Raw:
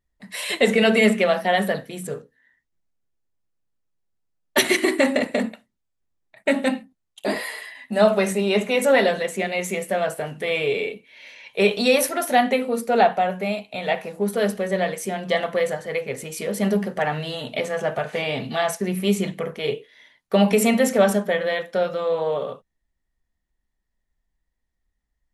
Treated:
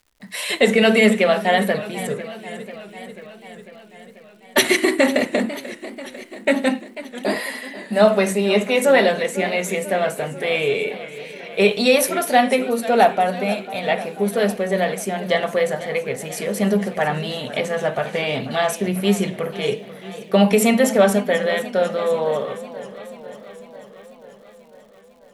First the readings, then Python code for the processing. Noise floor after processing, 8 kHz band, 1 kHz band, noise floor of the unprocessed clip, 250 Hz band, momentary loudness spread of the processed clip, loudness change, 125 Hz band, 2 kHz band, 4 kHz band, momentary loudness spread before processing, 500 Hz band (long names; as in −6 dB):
−47 dBFS, +2.5 dB, +2.5 dB, −77 dBFS, +2.5 dB, 18 LU, +2.5 dB, +3.0 dB, +2.5 dB, +2.5 dB, 11 LU, +2.5 dB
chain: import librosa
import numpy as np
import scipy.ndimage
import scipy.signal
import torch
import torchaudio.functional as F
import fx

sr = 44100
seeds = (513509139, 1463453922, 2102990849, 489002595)

y = fx.dmg_crackle(x, sr, seeds[0], per_s=230.0, level_db=-49.0)
y = fx.echo_warbled(y, sr, ms=493, feedback_pct=67, rate_hz=2.8, cents=132, wet_db=-15.5)
y = y * librosa.db_to_amplitude(2.5)